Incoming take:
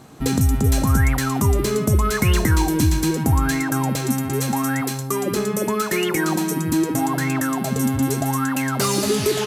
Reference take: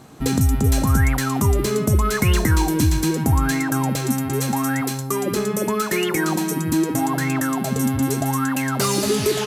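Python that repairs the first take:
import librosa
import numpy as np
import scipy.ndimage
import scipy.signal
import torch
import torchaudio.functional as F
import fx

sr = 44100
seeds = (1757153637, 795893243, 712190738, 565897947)

y = fx.fix_echo_inverse(x, sr, delay_ms=129, level_db=-21.0)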